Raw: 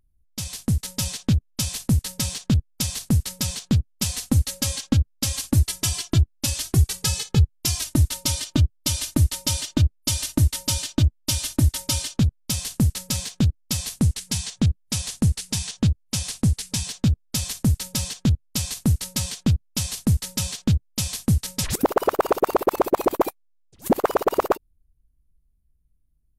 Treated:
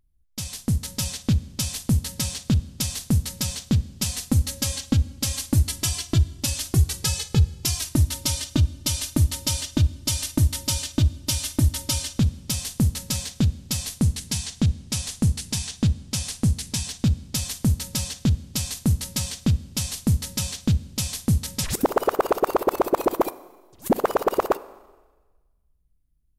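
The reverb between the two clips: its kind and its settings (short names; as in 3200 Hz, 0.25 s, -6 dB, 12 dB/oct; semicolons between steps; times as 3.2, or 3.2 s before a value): Schroeder reverb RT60 1.3 s, combs from 32 ms, DRR 17 dB; gain -1 dB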